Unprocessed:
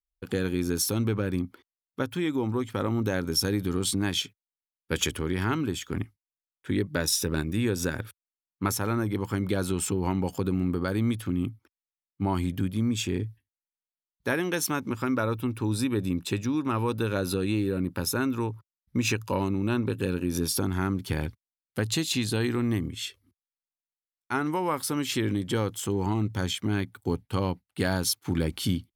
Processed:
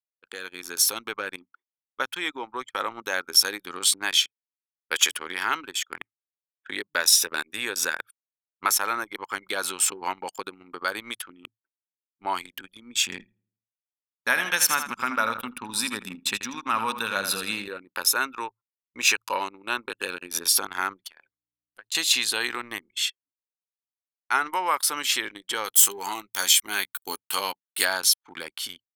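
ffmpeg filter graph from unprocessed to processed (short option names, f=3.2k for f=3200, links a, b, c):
-filter_complex "[0:a]asettb=1/sr,asplit=3[a][b][c];[a]atrim=end=13.044[d];[b]atrim=start=13.04:end=17.68,asetpts=PTS-STARTPTS,afade=t=in:d=0.004:c=qsin,afade=t=out:st=4.636:d=0.004:c=qsin,lowshelf=f=270:t=q:w=3:g=6,aecho=1:1:81|162|243|324|405:0.355|0.156|0.0687|0.0302|0.0133,atrim=end_sample=204624[e];[c]atrim=start=17.676[f];[d][e]acrossfade=d=0.004:c1=hsin:c2=qsin[g];[g][f]acrossfade=d=0.004:c1=qsin:c2=hsin,asettb=1/sr,asplit=3[h][i][j];[h]atrim=end=21.044[k];[i]atrim=start=21.04:end=21.95,asetpts=PTS-STARTPTS,afade=t=in:d=0.004:c=qsin,afade=t=out:st=0.906:d=0.004:c=qsin,lowshelf=f=370:g=-5,acompressor=threshold=-42dB:ratio=2.5:attack=3.2:release=140:knee=1:detection=peak,aeval=exprs='val(0)+0.00126*(sin(2*PI*60*n/s)+sin(2*PI*2*60*n/s)/2+sin(2*PI*3*60*n/s)/3+sin(2*PI*4*60*n/s)/4+sin(2*PI*5*60*n/s)/5)':c=same[l];[j]atrim=start=21.946[m];[k][l]acrossfade=d=0.004:c1=hsin:c2=qsin[n];[n][m]acrossfade=d=0.004:c1=qsin:c2=hsin,asettb=1/sr,asplit=3[o][p][q];[o]atrim=end=25.644[r];[p]atrim=start=25.64:end=27.85,asetpts=PTS-STARTPTS,afade=t=in:d=0.004:c=qsin,afade=t=out:st=2.206:d=0.004:c=qsin,aemphasis=mode=production:type=75fm,asplit=2[s][t];[t]adelay=15,volume=-8.5dB[u];[s][u]amix=inputs=2:normalize=0,atrim=end_sample=97461[v];[q]atrim=start=27.846[w];[r][v]acrossfade=d=0.004:c1=hsin:c2=qsin[x];[x][w]acrossfade=d=0.004:c1=qsin:c2=hsin,highpass=1k,anlmdn=0.158,dynaudnorm=f=130:g=11:m=9dB"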